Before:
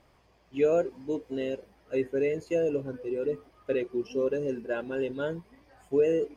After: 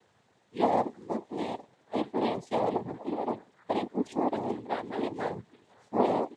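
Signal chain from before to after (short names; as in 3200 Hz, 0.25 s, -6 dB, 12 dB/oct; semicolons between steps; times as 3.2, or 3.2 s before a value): noise vocoder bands 6; gain -1.5 dB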